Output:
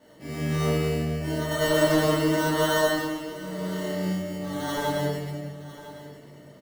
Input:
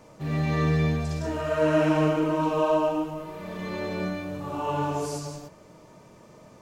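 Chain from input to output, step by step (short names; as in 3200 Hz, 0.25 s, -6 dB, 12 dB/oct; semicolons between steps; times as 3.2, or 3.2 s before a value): Wiener smoothing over 25 samples; HPF 62 Hz; low shelf 140 Hz -7 dB; sample-and-hold 18×; echo 1.005 s -16 dB; shoebox room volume 290 m³, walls mixed, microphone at 2.5 m; gain -6 dB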